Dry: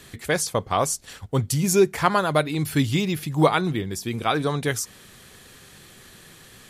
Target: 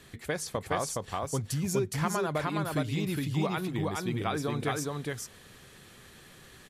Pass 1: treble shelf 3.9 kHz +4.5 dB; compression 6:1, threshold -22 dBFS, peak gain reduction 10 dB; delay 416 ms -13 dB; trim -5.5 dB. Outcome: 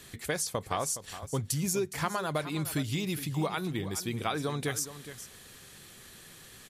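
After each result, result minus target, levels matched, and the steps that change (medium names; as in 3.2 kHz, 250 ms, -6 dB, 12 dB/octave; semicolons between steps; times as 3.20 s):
echo-to-direct -11 dB; 8 kHz band +4.5 dB
change: delay 416 ms -2 dB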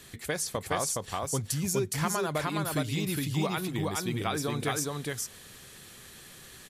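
8 kHz band +5.0 dB
change: treble shelf 3.9 kHz -5 dB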